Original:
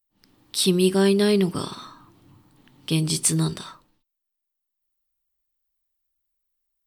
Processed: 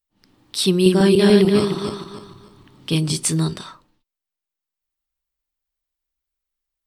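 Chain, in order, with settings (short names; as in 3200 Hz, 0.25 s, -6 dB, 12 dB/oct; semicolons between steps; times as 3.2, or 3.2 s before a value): 0.71–3.12 regenerating reverse delay 0.148 s, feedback 52%, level -2 dB; high shelf 11000 Hz -10.5 dB; gain +2.5 dB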